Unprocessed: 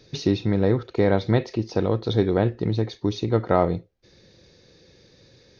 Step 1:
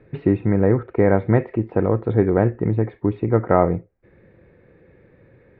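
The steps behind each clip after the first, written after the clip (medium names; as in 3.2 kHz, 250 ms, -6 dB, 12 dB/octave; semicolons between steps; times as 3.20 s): steep low-pass 2.2 kHz 36 dB/octave; trim +3.5 dB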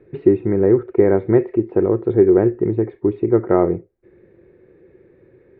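peaking EQ 370 Hz +15 dB 0.46 oct; trim -4.5 dB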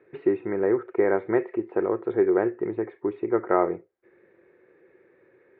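band-pass filter 1.5 kHz, Q 0.81; trim +1.5 dB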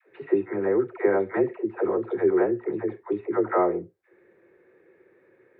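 phase dispersion lows, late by 95 ms, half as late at 450 Hz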